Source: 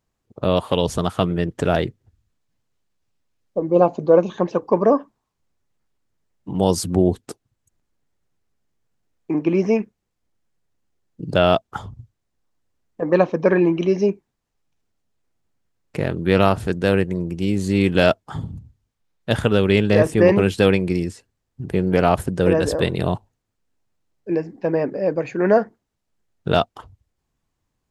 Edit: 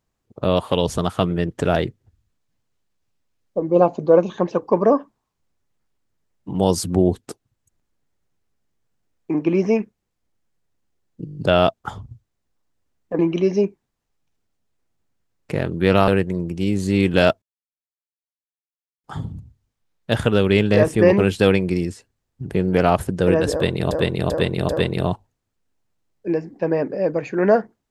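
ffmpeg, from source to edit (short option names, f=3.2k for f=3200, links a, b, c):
-filter_complex "[0:a]asplit=13[a][b][c][d][e][f][g][h][i][j][k][l][m];[a]atrim=end=11.272[n];[b]atrim=start=11.248:end=11.272[o];[c]atrim=start=11.248:end=11.272[p];[d]atrim=start=11.248:end=11.272[q];[e]atrim=start=11.248:end=11.272[r];[f]atrim=start=11.248:end=11.272[s];[g]atrim=start=11.248:end=13.072[t];[h]atrim=start=13.638:end=16.532[u];[i]atrim=start=16.888:end=18.23,asetpts=PTS-STARTPTS,afade=t=out:st=1.338:d=0.004:c=hsin,apad=pad_dur=1.62[v];[j]atrim=start=18.23:end=23.102,asetpts=PTS-STARTPTS,afade=t=in:d=0.004:c=hsin[w];[k]atrim=start=22.708:end=23.102[x];[l]atrim=start=22.708:end=23.102[y];[m]atrim=start=22.708[z];[n][o]acrossfade=d=0.004:c1=hsin:c2=hsin[aa];[aa][p]acrossfade=d=0.004:c1=hsin:c2=hsin[ab];[ab][q]acrossfade=d=0.004:c1=hsin:c2=hsin[ac];[ac][r]acrossfade=d=0.004:c1=hsin:c2=hsin[ad];[ad][s]acrossfade=d=0.004:c1=hsin:c2=hsin[ae];[ae][t]acrossfade=d=0.004:c1=hsin:c2=hsin[af];[af][u]acrossfade=d=0.004:c1=hsin:c2=hsin[ag];[v][w]concat=n=2:v=0:a=1[ah];[ag][ah]acrossfade=d=0.004:c1=hsin:c2=hsin[ai];[ai][x]acrossfade=d=0.004:c1=hsin:c2=hsin[aj];[aj][y]acrossfade=d=0.004:c1=hsin:c2=hsin[ak];[ak][z]acrossfade=d=0.004:c1=hsin:c2=hsin"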